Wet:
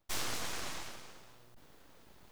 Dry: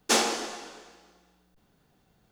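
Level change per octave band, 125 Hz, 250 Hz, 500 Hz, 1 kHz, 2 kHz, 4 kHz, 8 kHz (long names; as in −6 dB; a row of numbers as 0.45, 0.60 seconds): +2.5, −14.5, −16.0, −13.0, −10.0, −11.0, −11.5 decibels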